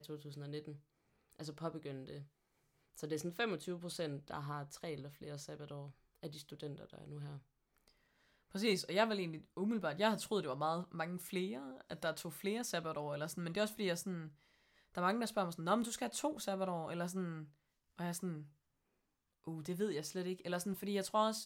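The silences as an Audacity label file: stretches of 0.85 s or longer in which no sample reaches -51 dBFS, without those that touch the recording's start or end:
18.450000	19.470000	silence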